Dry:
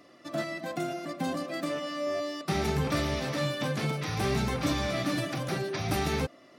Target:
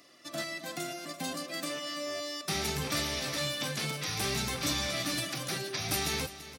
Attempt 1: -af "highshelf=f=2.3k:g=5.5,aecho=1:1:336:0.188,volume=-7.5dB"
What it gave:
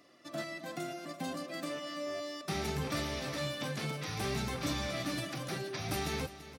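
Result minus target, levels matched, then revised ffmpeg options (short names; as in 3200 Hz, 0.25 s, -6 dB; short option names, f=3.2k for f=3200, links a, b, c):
4000 Hz band -3.5 dB
-af "highshelf=f=2.3k:g=16,aecho=1:1:336:0.188,volume=-7.5dB"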